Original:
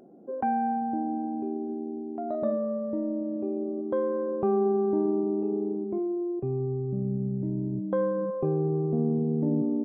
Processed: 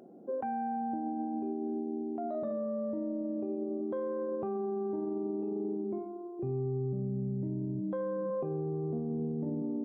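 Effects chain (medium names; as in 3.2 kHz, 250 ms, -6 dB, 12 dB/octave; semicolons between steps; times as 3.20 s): high-pass 53 Hz; hum notches 50/100/150/200/250/300/350/400 Hz; peak limiter -28 dBFS, peak gain reduction 11 dB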